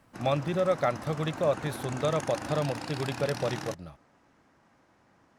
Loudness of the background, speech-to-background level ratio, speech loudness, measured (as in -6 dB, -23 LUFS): -39.0 LUFS, 8.5 dB, -30.5 LUFS